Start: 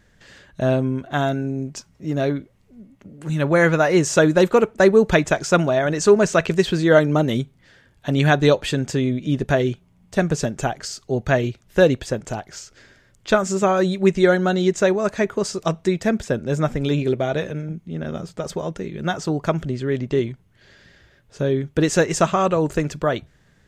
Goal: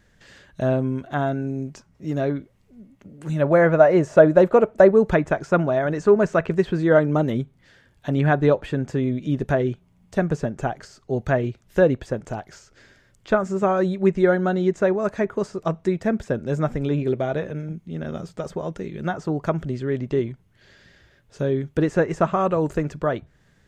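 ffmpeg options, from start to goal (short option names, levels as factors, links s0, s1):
-filter_complex "[0:a]asettb=1/sr,asplit=3[s0][s1][s2];[s0]atrim=end=3.324[s3];[s1]atrim=start=3.32:end=4.91,asetpts=PTS-STARTPTS,afade=t=in:d=0.004:c=qsin,afade=t=out:st=1.586:d=0.004:c=qsin,equalizer=f=620:w=3.6:g=9.5[s4];[s2]atrim=start=4.906[s5];[s3][s4]acrossfade=d=0.004:c1=hsin:c2=qsin[s6];[s6][s5]acrossfade=d=0.004:c1=qsin:c2=hsin,acrossover=split=2000[s7][s8];[s8]acompressor=threshold=0.00501:ratio=6[s9];[s7][s9]amix=inputs=2:normalize=0,volume=0.794"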